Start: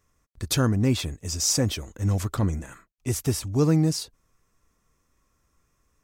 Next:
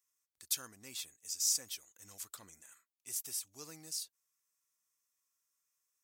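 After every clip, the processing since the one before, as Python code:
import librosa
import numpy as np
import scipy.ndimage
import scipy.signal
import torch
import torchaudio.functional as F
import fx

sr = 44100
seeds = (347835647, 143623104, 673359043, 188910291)

y = np.diff(x, prepend=0.0)
y = F.gain(torch.from_numpy(y), -6.5).numpy()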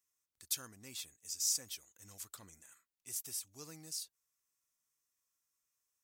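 y = fx.low_shelf(x, sr, hz=200.0, db=8.0)
y = F.gain(torch.from_numpy(y), -2.0).numpy()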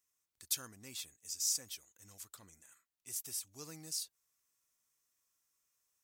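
y = fx.rider(x, sr, range_db=4, speed_s=2.0)
y = F.gain(torch.from_numpy(y), 1.0).numpy()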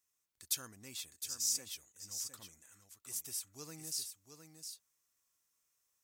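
y = x + 10.0 ** (-8.0 / 20.0) * np.pad(x, (int(711 * sr / 1000.0), 0))[:len(x)]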